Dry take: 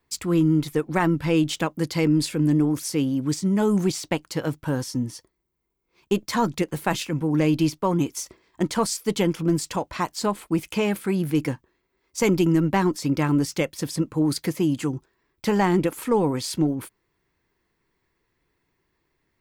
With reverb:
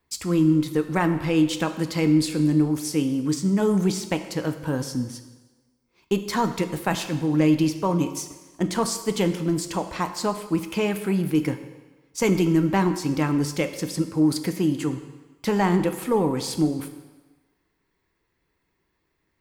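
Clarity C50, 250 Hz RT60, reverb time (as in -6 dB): 10.5 dB, 1.2 s, 1.2 s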